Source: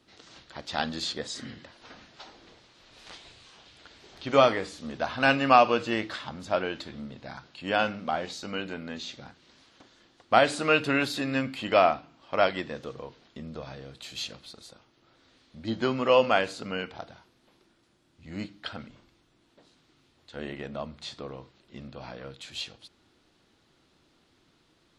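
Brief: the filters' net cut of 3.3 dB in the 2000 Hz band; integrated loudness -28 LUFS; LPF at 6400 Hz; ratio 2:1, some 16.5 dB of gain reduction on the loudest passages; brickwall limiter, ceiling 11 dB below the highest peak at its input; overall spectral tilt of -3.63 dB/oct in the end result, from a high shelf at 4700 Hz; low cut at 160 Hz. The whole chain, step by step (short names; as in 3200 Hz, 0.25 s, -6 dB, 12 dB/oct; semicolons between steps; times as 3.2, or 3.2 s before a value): HPF 160 Hz; LPF 6400 Hz; bell 2000 Hz -6.5 dB; high shelf 4700 Hz +8 dB; compressor 2:1, threshold -46 dBFS; gain +18 dB; limiter -15 dBFS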